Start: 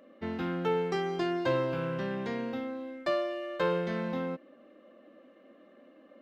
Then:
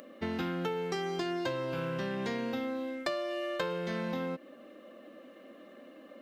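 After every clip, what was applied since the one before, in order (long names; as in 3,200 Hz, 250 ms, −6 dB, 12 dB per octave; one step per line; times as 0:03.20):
downward compressor 10 to 1, threshold −35 dBFS, peak gain reduction 12 dB
high-shelf EQ 4,100 Hz +11.5 dB
upward compression, threshold −53 dBFS
level +4 dB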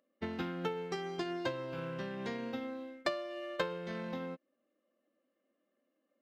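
high-shelf EQ 8,300 Hz −8.5 dB
expander for the loud parts 2.5 to 1, over −50 dBFS
level +2 dB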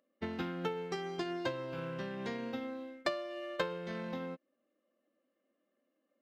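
no processing that can be heard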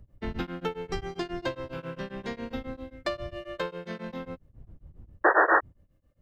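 wind on the microphone 82 Hz −48 dBFS
sound drawn into the spectrogram noise, 0:05.24–0:05.61, 310–1,900 Hz −23 dBFS
tremolo along a rectified sine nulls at 7.4 Hz
level +5.5 dB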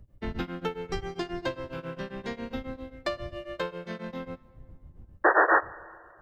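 dense smooth reverb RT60 2.4 s, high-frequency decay 0.65×, DRR 19.5 dB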